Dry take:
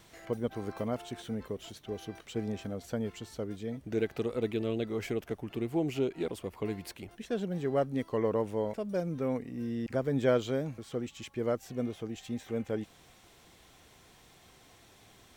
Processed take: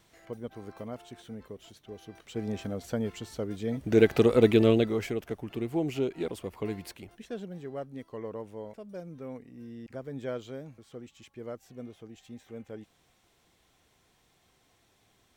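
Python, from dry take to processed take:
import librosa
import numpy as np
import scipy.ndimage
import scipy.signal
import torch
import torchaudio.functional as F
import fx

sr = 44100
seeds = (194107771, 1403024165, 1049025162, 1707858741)

y = fx.gain(x, sr, db=fx.line((2.04, -6.0), (2.56, 3.0), (3.5, 3.0), (4.08, 11.5), (4.69, 11.5), (5.11, 1.0), (6.79, 1.0), (7.74, -9.0)))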